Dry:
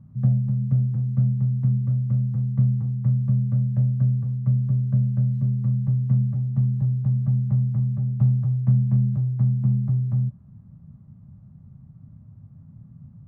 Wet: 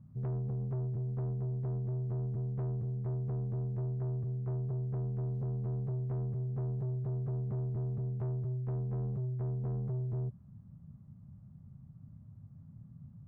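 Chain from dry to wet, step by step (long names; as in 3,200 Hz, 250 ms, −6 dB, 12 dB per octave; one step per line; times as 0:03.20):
speech leveller 0.5 s
soft clipping −25.5 dBFS, distortion −9 dB
level −7 dB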